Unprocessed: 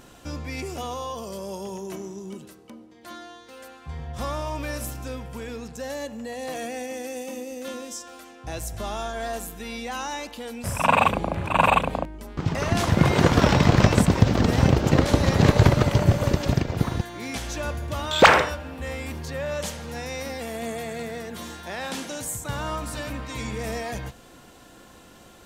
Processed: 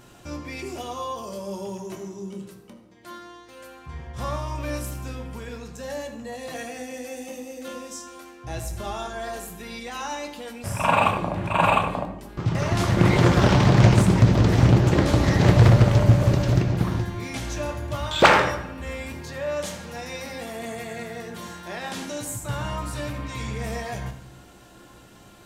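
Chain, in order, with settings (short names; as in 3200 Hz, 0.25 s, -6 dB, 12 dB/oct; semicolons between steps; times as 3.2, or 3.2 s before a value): reverb RT60 0.80 s, pre-delay 4 ms, DRR 2.5 dB; Doppler distortion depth 0.42 ms; gain -2.5 dB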